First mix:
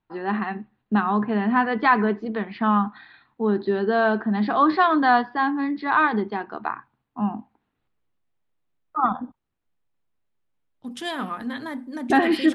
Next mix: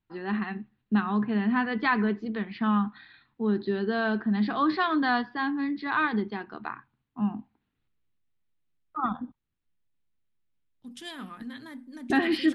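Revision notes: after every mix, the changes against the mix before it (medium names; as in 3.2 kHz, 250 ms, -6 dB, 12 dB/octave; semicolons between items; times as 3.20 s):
second voice -6.0 dB; master: add peaking EQ 730 Hz -10.5 dB 2.2 oct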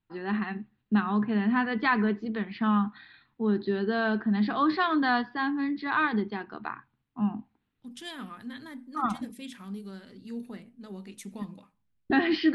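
second voice: entry -3.00 s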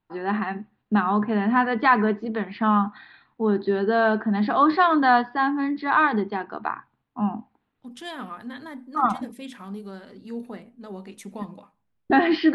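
master: add peaking EQ 730 Hz +10.5 dB 2.2 oct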